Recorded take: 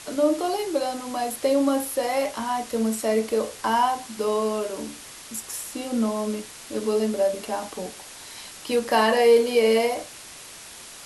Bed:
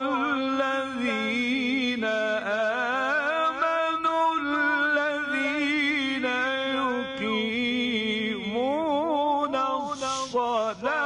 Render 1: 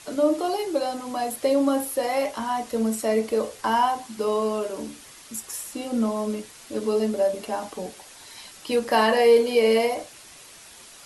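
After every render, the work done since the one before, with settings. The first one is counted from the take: denoiser 6 dB, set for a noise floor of -43 dBFS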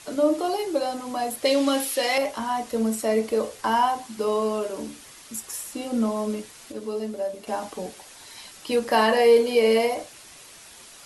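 1.45–2.18 weighting filter D; 6.72–7.47 gain -6.5 dB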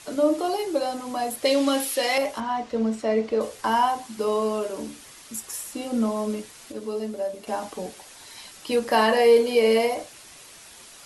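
2.4–3.41 air absorption 120 m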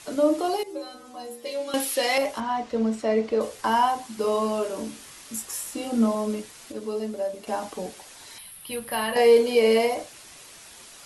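0.63–1.74 metallic resonator 77 Hz, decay 0.47 s, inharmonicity 0.002; 4.22–6.15 doubler 22 ms -5.5 dB; 8.38–9.16 EQ curve 160 Hz 0 dB, 280 Hz -13 dB, 3400 Hz -3 dB, 7000 Hz -18 dB, 10000 Hz +8 dB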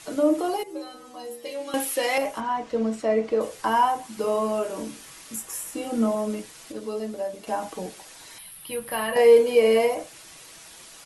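comb 6.2 ms, depth 32%; dynamic EQ 4400 Hz, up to -7 dB, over -47 dBFS, Q 1.4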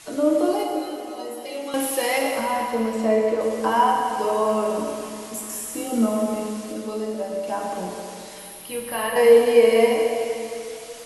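plate-style reverb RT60 2.9 s, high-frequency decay 1×, DRR 0 dB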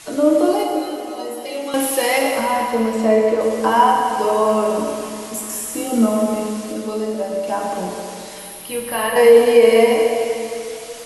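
gain +5 dB; limiter -2 dBFS, peak gain reduction 2.5 dB

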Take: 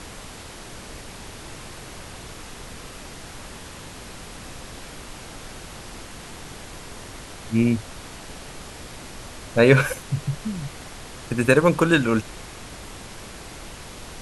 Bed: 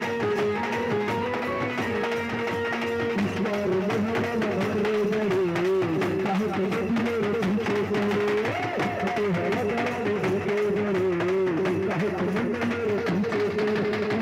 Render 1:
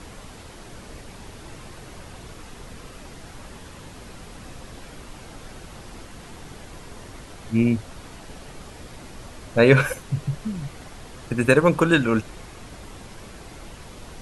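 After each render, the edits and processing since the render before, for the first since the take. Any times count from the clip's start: denoiser 6 dB, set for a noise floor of -40 dBFS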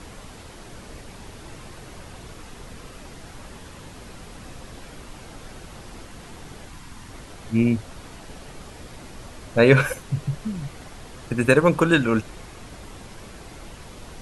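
6.69–7.1 band shelf 500 Hz -10.5 dB 1.1 oct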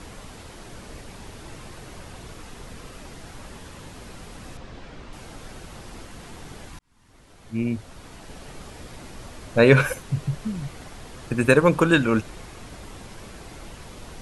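4.57–5.13 air absorption 110 m; 6.79–8.52 fade in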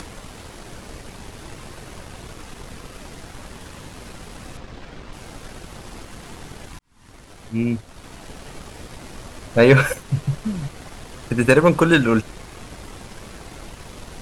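upward compressor, threshold -35 dBFS; sample leveller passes 1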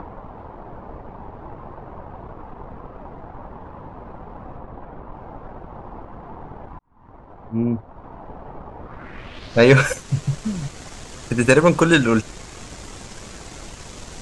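low-pass sweep 920 Hz -> 7300 Hz, 8.8–9.72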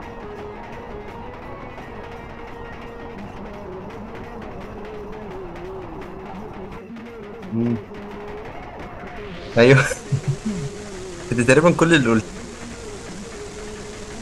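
add bed -11 dB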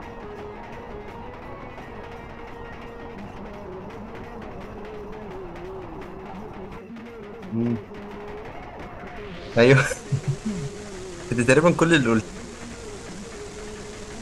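gain -3 dB

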